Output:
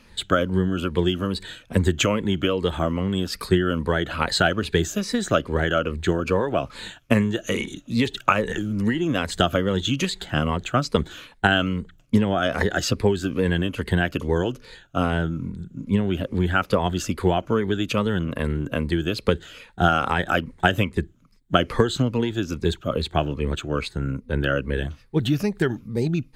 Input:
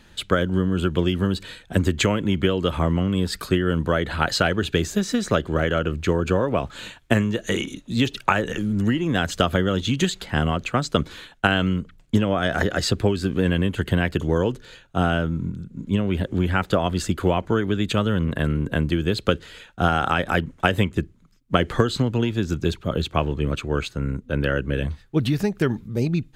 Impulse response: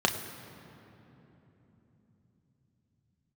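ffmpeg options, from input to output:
-af "afftfilt=real='re*pow(10,9/40*sin(2*PI*(0.91*log(max(b,1)*sr/1024/100)/log(2)-(-2.4)*(pts-256)/sr)))':imag='im*pow(10,9/40*sin(2*PI*(0.91*log(max(b,1)*sr/1024/100)/log(2)-(-2.4)*(pts-256)/sr)))':win_size=1024:overlap=0.75,adynamicequalizer=threshold=0.0316:dfrequency=120:dqfactor=0.83:tfrequency=120:tqfactor=0.83:attack=5:release=100:ratio=0.375:range=2.5:mode=cutabove:tftype=bell,volume=-1dB"

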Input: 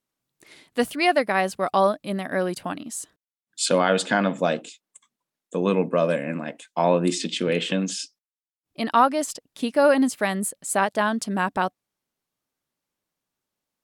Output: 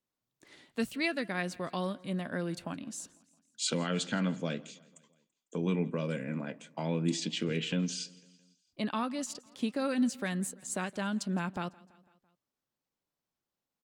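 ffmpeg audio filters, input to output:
-filter_complex "[0:a]equalizer=f=11k:w=1.1:g=-8,acrossover=split=330|1600|3600[a][b][c][d];[b]acompressor=threshold=-35dB:ratio=6[e];[c]flanger=delay=9.8:depth=5.2:regen=41:speed=0.8:shape=sinusoidal[f];[a][e][f][d]amix=inputs=4:normalize=0,asetrate=41625,aresample=44100,atempo=1.05946,aecho=1:1:167|334|501|668:0.0668|0.0394|0.0233|0.0137,volume=-5dB"

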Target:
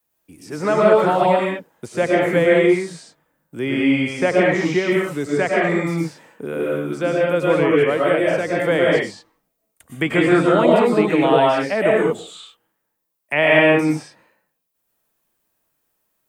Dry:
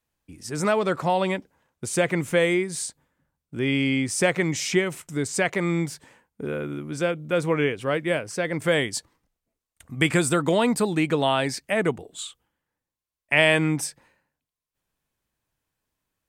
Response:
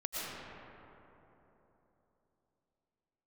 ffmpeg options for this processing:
-filter_complex "[0:a]tiltshelf=f=1.5k:g=5,acrossover=split=190|1500|5800[a][b][c][d];[d]acompressor=threshold=-57dB:ratio=5[e];[a][b][c][e]amix=inputs=4:normalize=0,aemphasis=mode=production:type=bsi[f];[1:a]atrim=start_sample=2205,afade=t=out:st=0.28:d=0.01,atrim=end_sample=12789[g];[f][g]afir=irnorm=-1:irlink=0,acrossover=split=3000[h][i];[i]acompressor=threshold=-44dB:ratio=4:attack=1:release=60[j];[h][j]amix=inputs=2:normalize=0,volume=4dB"

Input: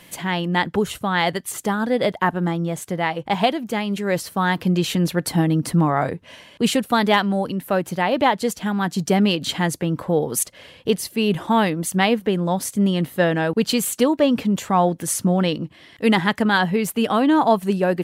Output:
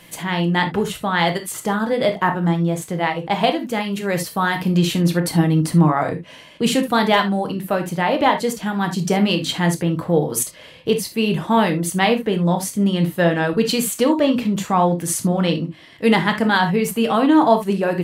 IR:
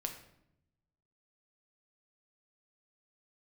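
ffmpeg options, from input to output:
-filter_complex "[0:a]asettb=1/sr,asplit=3[a][b][c];[a]atrim=end=3.714[d];[b]atrim=start=3.71:end=4.78,asetpts=PTS-STARTPTS,afade=t=in:d=0.004:c=qsin,afade=t=out:st=1.066:d=0.004:c=qsin,highshelf=f=10k:g=6.5[e];[c]atrim=start=4.776[f];[d][e]acrossfade=d=0.004:c1=hsin:c2=qsin[g];[g][f]acrossfade=d=0.004:c1=qsin:c2=hsin[h];[1:a]atrim=start_sample=2205,afade=t=out:st=0.13:d=0.01,atrim=end_sample=6174[i];[h][i]afir=irnorm=-1:irlink=0,volume=2dB"

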